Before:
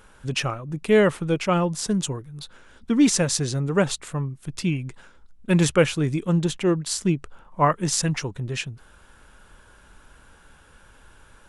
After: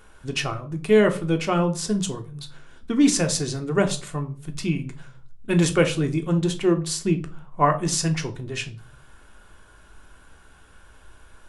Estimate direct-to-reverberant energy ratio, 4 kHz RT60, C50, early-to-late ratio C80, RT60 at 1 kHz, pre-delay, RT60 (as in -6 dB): 5.0 dB, 0.30 s, 15.0 dB, 20.5 dB, 0.35 s, 3 ms, 0.45 s